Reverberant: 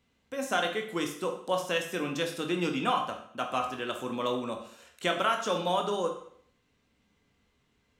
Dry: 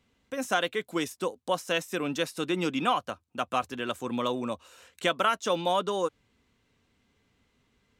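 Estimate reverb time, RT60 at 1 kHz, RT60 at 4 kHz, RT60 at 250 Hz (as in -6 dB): 0.60 s, 0.60 s, 0.60 s, 0.60 s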